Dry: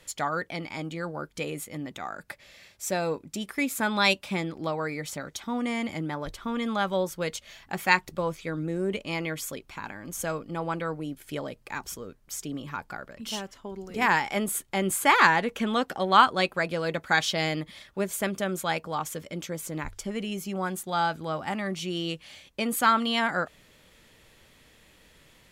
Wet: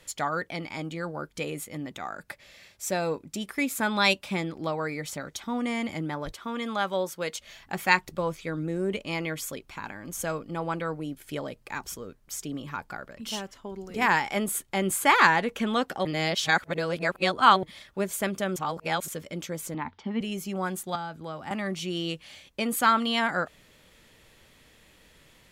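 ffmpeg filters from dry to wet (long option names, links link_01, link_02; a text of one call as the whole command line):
ffmpeg -i in.wav -filter_complex "[0:a]asettb=1/sr,asplit=3[link_01][link_02][link_03];[link_01]atrim=end=6.324[link_04];[link_02]atrim=start=6.32:end=7.4,asetpts=PTS-STARTPTS,afade=type=in:duration=0.004:curve=qsin,afade=type=out:start_time=1.076:duration=0.004:curve=qsin,highpass=frequency=290:poles=1[link_05];[link_03]atrim=start=7.396[link_06];[link_04][link_05]acrossfade=duration=0.004:curve1=hsin:curve2=qsin[link_07];[link_07][link_06]acrossfade=duration=0.004:curve1=qsin:curve2=hsin,asettb=1/sr,asplit=3[link_08][link_09][link_10];[link_08]atrim=end=19.744[link_11];[link_09]atrim=start=19.74:end=20.21,asetpts=PTS-STARTPTS,afade=type=in:duration=0.004:curve=qsin,afade=type=out:start_time=0.466:duration=0.004:curve=qsin,highpass=150,equalizer=frequency=240:width_type=q:width=4:gain=9,equalizer=frequency=370:width_type=q:width=4:gain=-4,equalizer=frequency=560:width_type=q:width=4:gain=-9,equalizer=frequency=890:width_type=q:width=4:gain=9,equalizer=frequency=1500:width_type=q:width=4:gain=-4,equalizer=frequency=2500:width_type=q:width=4:gain=-4,lowpass=frequency=3600:width=0.5412,lowpass=frequency=3600:width=1.3066[link_12];[link_10]atrim=start=20.206[link_13];[link_11][link_12]acrossfade=duration=0.004:curve1=hsin:curve2=qsin[link_14];[link_14][link_13]acrossfade=duration=0.004:curve1=qsin:curve2=hsin,asettb=1/sr,asplit=3[link_15][link_16][link_17];[link_15]atrim=end=20.954[link_18];[link_16]atrim=start=20.95:end=21.51,asetpts=PTS-STARTPTS,afade=type=in:duration=0.004:curve=qsin,afade=type=out:start_time=0.556:duration=0.004:curve=qsin,acrossover=split=270|1700[link_19][link_20][link_21];[link_19]acompressor=threshold=-43dB:ratio=4[link_22];[link_20]acompressor=threshold=-36dB:ratio=4[link_23];[link_21]acompressor=threshold=-49dB:ratio=4[link_24];[link_22][link_23][link_24]amix=inputs=3:normalize=0[link_25];[link_17]atrim=start=21.506[link_26];[link_18][link_25]acrossfade=duration=0.004:curve1=hsin:curve2=qsin[link_27];[link_27][link_26]acrossfade=duration=0.004:curve1=qsin:curve2=hsin,asplit=5[link_28][link_29][link_30][link_31][link_32];[link_28]atrim=end=16.052[link_33];[link_29]atrim=start=16.048:end=17.632,asetpts=PTS-STARTPTS,areverse[link_34];[link_30]atrim=start=17.628:end=18.562[link_35];[link_31]atrim=start=18.558:end=19.082,asetpts=PTS-STARTPTS,areverse[link_36];[link_32]atrim=start=19.078[link_37];[link_33][link_34]acrossfade=duration=0.004:curve1=hsin:curve2=hsin[link_38];[link_38][link_35]acrossfade=duration=0.004:curve1=hsin:curve2=hsin[link_39];[link_39][link_36]acrossfade=duration=0.004:curve1=hsin:curve2=hsin[link_40];[link_40][link_37]acrossfade=duration=0.004:curve1=hsin:curve2=hsin" out.wav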